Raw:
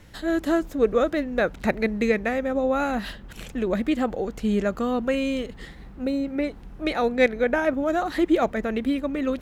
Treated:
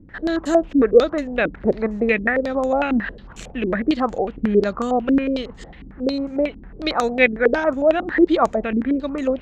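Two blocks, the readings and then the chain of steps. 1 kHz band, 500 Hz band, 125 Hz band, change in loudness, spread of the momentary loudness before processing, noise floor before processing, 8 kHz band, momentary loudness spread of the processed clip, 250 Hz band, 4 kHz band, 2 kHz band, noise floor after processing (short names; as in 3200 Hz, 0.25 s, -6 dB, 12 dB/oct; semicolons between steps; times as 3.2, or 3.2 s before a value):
+4.5 dB, +5.0 dB, +2.5 dB, +4.5 dB, 9 LU, -43 dBFS, n/a, 9 LU, +4.0 dB, +4.0 dB, +5.5 dB, -42 dBFS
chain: stepped low-pass 11 Hz 280–7000 Hz; gain +1 dB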